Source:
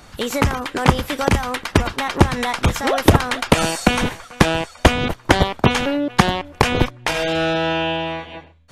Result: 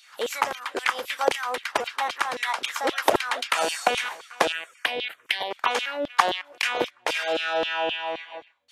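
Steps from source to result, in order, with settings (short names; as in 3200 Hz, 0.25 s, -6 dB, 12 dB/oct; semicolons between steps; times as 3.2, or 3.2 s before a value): 4.52–5.51 envelope phaser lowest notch 560 Hz, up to 1300 Hz, full sweep at -13 dBFS; LFO high-pass saw down 3.8 Hz 380–3500 Hz; gain -7 dB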